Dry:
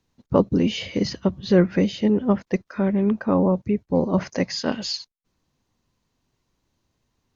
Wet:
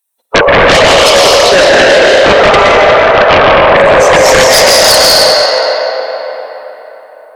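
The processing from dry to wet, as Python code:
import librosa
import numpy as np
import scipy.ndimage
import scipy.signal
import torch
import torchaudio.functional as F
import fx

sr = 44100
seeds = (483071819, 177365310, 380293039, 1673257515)

p1 = fx.bin_expand(x, sr, power=1.5)
p2 = scipy.signal.sosfilt(scipy.signal.ellip(4, 1.0, 70, 490.0, 'highpass', fs=sr, output='sos'), p1)
p3 = p2 + fx.room_early_taps(p2, sr, ms=(52, 69), db=(-10.5, -14.5), dry=0)
p4 = fx.echo_pitch(p3, sr, ms=212, semitones=2, count=2, db_per_echo=-6.0)
p5 = fx.hpss(p4, sr, part='percussive', gain_db=8)
p6 = fx.rev_freeverb(p5, sr, rt60_s=4.0, hf_ratio=0.6, predelay_ms=90, drr_db=-5.5)
p7 = fx.rider(p6, sr, range_db=4, speed_s=0.5)
p8 = p6 + (p7 * 10.0 ** (2.0 / 20.0))
p9 = fx.fold_sine(p8, sr, drive_db=14, ceiling_db=3.5)
y = p9 * 10.0 ** (-5.0 / 20.0)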